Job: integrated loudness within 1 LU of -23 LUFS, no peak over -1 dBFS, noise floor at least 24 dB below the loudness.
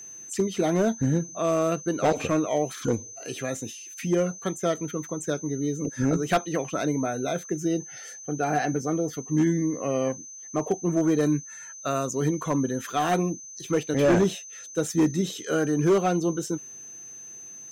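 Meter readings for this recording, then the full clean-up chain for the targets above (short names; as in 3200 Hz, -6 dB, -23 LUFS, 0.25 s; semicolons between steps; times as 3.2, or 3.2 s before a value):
clipped 0.9%; flat tops at -15.5 dBFS; steady tone 6200 Hz; tone level -40 dBFS; loudness -26.5 LUFS; peak -15.5 dBFS; loudness target -23.0 LUFS
-> clip repair -15.5 dBFS; notch 6200 Hz, Q 30; gain +3.5 dB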